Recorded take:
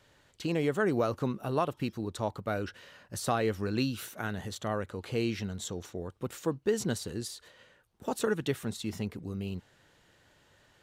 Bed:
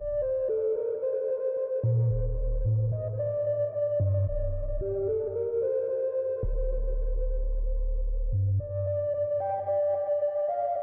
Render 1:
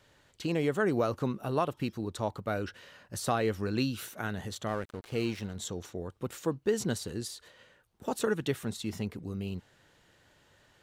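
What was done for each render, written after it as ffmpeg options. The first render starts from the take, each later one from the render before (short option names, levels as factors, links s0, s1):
-filter_complex "[0:a]asettb=1/sr,asplit=3[s0][s1][s2];[s0]atrim=end=4.684[s3];[s1]atrim=start=4.68:end=5.56,asetpts=PTS-STARTPTS,afade=t=in:d=0.004:c=qsin,afade=t=out:st=0.876:d=0.004:c=qsin,aeval=exprs='sgn(val(0))*max(abs(val(0))-0.00531,0)':c=same[s4];[s2]atrim=start=5.556[s5];[s3][s4]acrossfade=d=0.004:c1=hsin:c2=qsin[s6];[s6][s5]acrossfade=d=0.004:c1=qsin:c2=hsin"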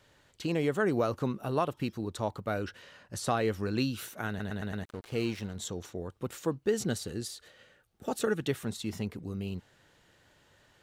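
-filter_complex "[0:a]asettb=1/sr,asplit=3[s0][s1][s2];[s0]atrim=end=2.824[s3];[s1]atrim=start=2.82:end=3.37,asetpts=PTS-STARTPTS,afade=t=in:d=0.004:c=qsin,afade=t=out:st=0.546:d=0.004:c=qsin,lowpass=11000[s4];[s2]atrim=start=3.366[s5];[s3][s4]acrossfade=d=0.004:c1=hsin:c2=qsin[s6];[s6][s5]acrossfade=d=0.004:c1=qsin:c2=hsin,asettb=1/sr,asplit=3[s7][s8][s9];[s7]atrim=end=6.664[s10];[s8]atrim=start=6.66:end=8.48,asetpts=PTS-STARTPTS,afade=t=in:d=0.004:c=qsin,afade=t=out:st=1.816:d=0.004:c=qsin,asuperstop=centerf=990:order=4:qfactor=6.6[s11];[s9]atrim=start=8.476[s12];[s10][s11]acrossfade=d=0.004:c1=hsin:c2=qsin[s13];[s13][s12]acrossfade=d=0.004:c1=qsin:c2=hsin,asplit=6[s14][s15][s16][s17][s18][s19];[s14]atrim=end=4.402[s20];[s15]atrim=start=4.288:end=4.402[s21];[s16]atrim=start=4.288:end=4.402[s22];[s17]atrim=start=4.288:end=4.402[s23];[s18]atrim=start=4.288:end=4.402[s24];[s19]atrim=start=4.838[s25];[s20][s21]acrossfade=d=0.004:c1=hsin:c2=hsin[s26];[s26][s22]acrossfade=d=0.004:c1=hsin:c2=hsin[s27];[s27][s23]acrossfade=d=0.004:c1=hsin:c2=hsin[s28];[s28][s24]acrossfade=d=0.004:c1=hsin:c2=hsin[s29];[s29][s25]acrossfade=d=0.004:c1=hsin:c2=hsin"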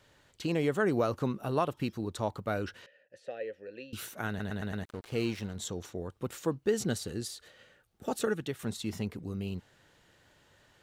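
-filter_complex "[0:a]asettb=1/sr,asplit=3[s0][s1][s2];[s0]atrim=end=2.864[s3];[s1]atrim=start=2.86:end=3.93,asetpts=PTS-STARTPTS,afade=t=in:d=0.004:c=qsin,afade=t=out:st=1.066:d=0.004:c=qsin,asplit=3[s4][s5][s6];[s4]bandpass=f=530:t=q:w=8,volume=1[s7];[s5]bandpass=f=1840:t=q:w=8,volume=0.501[s8];[s6]bandpass=f=2480:t=q:w=8,volume=0.355[s9];[s7][s8][s9]amix=inputs=3:normalize=0[s10];[s2]atrim=start=3.926[s11];[s3][s10]acrossfade=d=0.004:c1=hsin:c2=qsin[s12];[s12][s11]acrossfade=d=0.004:c1=qsin:c2=hsin,asplit=2[s13][s14];[s13]atrim=end=8.59,asetpts=PTS-STARTPTS,afade=t=out:st=8.07:d=0.52:c=qsin:silence=0.375837[s15];[s14]atrim=start=8.59,asetpts=PTS-STARTPTS,afade=t=in:d=0.004:c=hsin:silence=0.375837[s16];[s15][s16]concat=n=2:v=0:a=1"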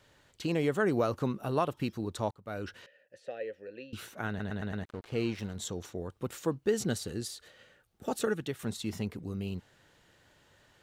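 -filter_complex "[0:a]asettb=1/sr,asplit=3[s0][s1][s2];[s0]atrim=end=3.684[s3];[s1]atrim=start=3.68:end=5.39,asetpts=PTS-STARTPTS,afade=t=in:d=0.004:c=qsin,afade=t=out:st=1.706:d=0.004:c=qsin,lowpass=f=4000:p=1[s4];[s2]atrim=start=5.386[s5];[s3][s4]acrossfade=d=0.004:c1=hsin:c2=qsin[s6];[s6][s5]acrossfade=d=0.004:c1=qsin:c2=hsin,asplit=2[s7][s8];[s7]atrim=end=2.31,asetpts=PTS-STARTPTS,afade=t=out:st=2.306:d=0.004:c=hsin[s9];[s8]atrim=start=2.31,asetpts=PTS-STARTPTS,afade=t=in:d=0.46[s10];[s9][s10]concat=n=2:v=0:a=1"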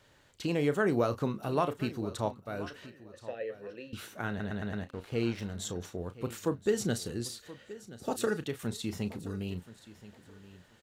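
-filter_complex "[0:a]asplit=2[s0][s1];[s1]adelay=34,volume=0.251[s2];[s0][s2]amix=inputs=2:normalize=0,aecho=1:1:1026|2052:0.141|0.0297"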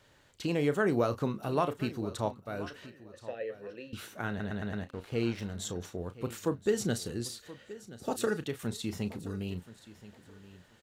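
-af anull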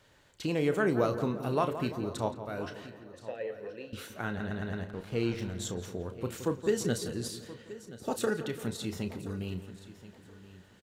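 -filter_complex "[0:a]asplit=2[s0][s1];[s1]adelay=32,volume=0.211[s2];[s0][s2]amix=inputs=2:normalize=0,asplit=2[s3][s4];[s4]adelay=171,lowpass=f=2400:p=1,volume=0.282,asplit=2[s5][s6];[s6]adelay=171,lowpass=f=2400:p=1,volume=0.55,asplit=2[s7][s8];[s8]adelay=171,lowpass=f=2400:p=1,volume=0.55,asplit=2[s9][s10];[s10]adelay=171,lowpass=f=2400:p=1,volume=0.55,asplit=2[s11][s12];[s12]adelay=171,lowpass=f=2400:p=1,volume=0.55,asplit=2[s13][s14];[s14]adelay=171,lowpass=f=2400:p=1,volume=0.55[s15];[s3][s5][s7][s9][s11][s13][s15]amix=inputs=7:normalize=0"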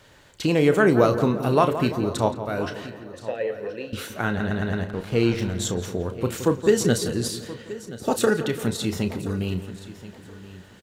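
-af "volume=3.16"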